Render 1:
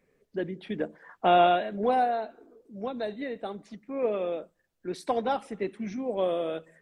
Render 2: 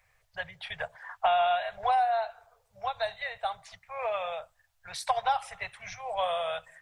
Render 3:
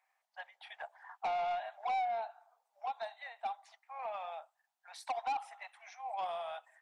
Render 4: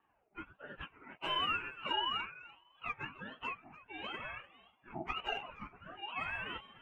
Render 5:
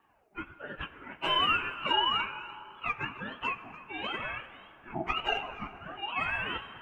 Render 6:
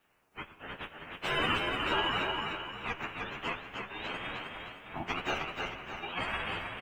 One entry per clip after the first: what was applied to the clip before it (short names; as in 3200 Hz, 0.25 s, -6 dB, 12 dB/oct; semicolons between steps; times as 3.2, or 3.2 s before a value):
Chebyshev band-stop 110–730 Hz, order 3; compressor 12:1, threshold -30 dBFS, peak gain reduction 11 dB; gain +8 dB
ladder high-pass 720 Hz, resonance 65%; soft clip -28.5 dBFS, distortion -10 dB; gain -2 dB
spectrum mirrored in octaves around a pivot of 1200 Hz; thinning echo 0.295 s, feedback 19%, high-pass 640 Hz, level -17 dB; ring modulator with a swept carrier 760 Hz, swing 35%, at 1.5 Hz; gain +5 dB
plate-style reverb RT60 3.5 s, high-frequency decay 0.5×, DRR 12.5 dB; gain +7.5 dB
spectral limiter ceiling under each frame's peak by 20 dB; feedback echo 0.308 s, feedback 39%, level -4.5 dB; endless flanger 9.8 ms +2 Hz